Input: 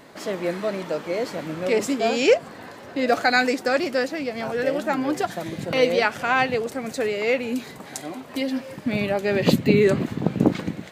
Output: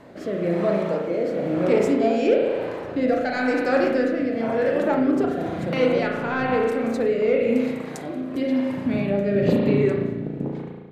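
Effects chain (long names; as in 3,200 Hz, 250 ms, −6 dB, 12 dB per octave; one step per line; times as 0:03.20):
fade-out on the ending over 2.00 s
high-shelf EQ 2,100 Hz −12 dB
in parallel at −2 dB: downward compressor, threshold −28 dBFS, peak gain reduction 14.5 dB
on the sum: soft clipping −9 dBFS, distortion −23 dB
spring reverb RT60 1.4 s, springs 35 ms, chirp 25 ms, DRR −0.5 dB
rotating-speaker cabinet horn 1 Hz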